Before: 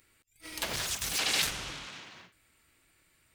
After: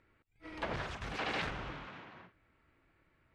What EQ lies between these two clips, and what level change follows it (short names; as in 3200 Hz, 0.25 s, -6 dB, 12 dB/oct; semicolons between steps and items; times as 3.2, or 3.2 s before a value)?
LPF 1500 Hz 12 dB/oct; +1.5 dB